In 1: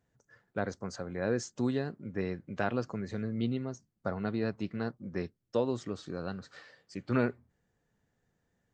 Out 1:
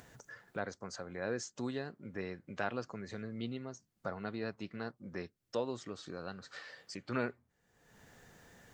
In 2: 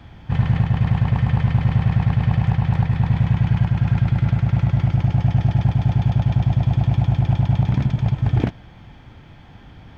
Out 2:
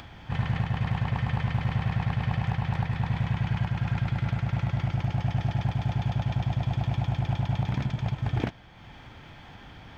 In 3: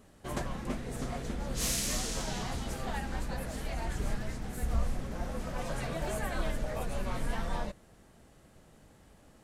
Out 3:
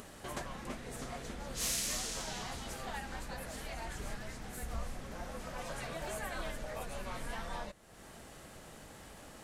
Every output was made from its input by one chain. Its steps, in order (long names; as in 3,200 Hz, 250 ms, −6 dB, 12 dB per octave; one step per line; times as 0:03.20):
low-shelf EQ 460 Hz −8.5 dB
upward compression, threshold −37 dBFS
level −2 dB